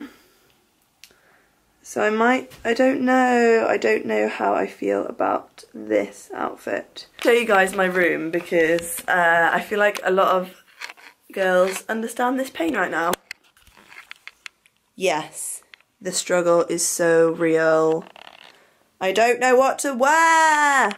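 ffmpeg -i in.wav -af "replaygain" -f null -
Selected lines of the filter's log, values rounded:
track_gain = +0.4 dB
track_peak = 0.442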